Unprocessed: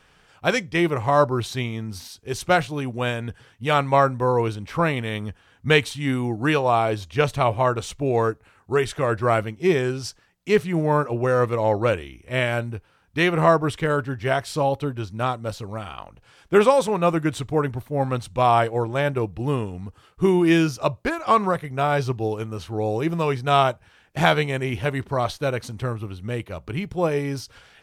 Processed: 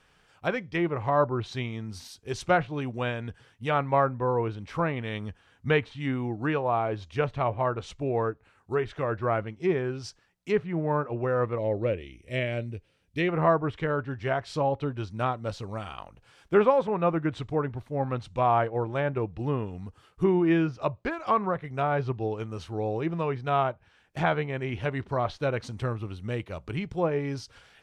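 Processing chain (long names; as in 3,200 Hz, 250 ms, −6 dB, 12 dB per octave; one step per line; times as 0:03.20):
0:11.58–0:13.29: flat-topped bell 1,100 Hz −12 dB 1.3 octaves
treble cut that deepens with the level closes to 2,000 Hz, closed at −17.5 dBFS
speech leveller within 3 dB 2 s
level −6 dB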